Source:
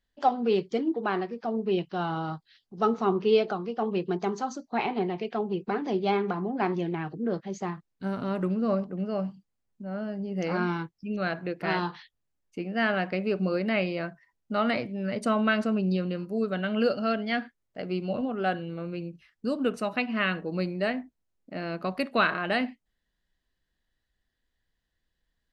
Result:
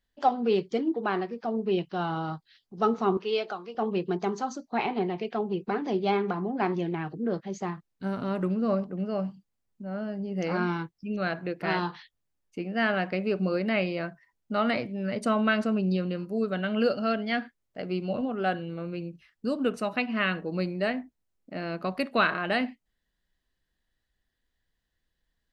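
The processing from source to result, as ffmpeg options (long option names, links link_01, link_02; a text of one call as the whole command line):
ffmpeg -i in.wav -filter_complex "[0:a]asettb=1/sr,asplit=3[link_01][link_02][link_03];[link_01]atrim=end=3.174[link_04];[link_02]atrim=start=3.17:end=3.75,asetpts=PTS-STARTPTS,afade=type=in:duration=0.004:curve=qsin,afade=type=out:start_time=0.576:duration=0.004:curve=qsin,highpass=frequency=830:poles=1[link_05];[link_03]atrim=start=3.746[link_06];[link_04][link_05]acrossfade=duration=0.004:curve1=hsin:curve2=qsin[link_07];[link_07][link_06]acrossfade=duration=0.004:curve1=qsin:curve2=hsin" out.wav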